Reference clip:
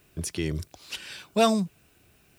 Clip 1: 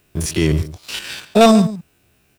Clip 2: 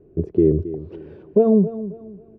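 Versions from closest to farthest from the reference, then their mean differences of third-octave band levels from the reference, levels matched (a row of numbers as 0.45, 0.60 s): 1, 2; 4.0, 14.5 dB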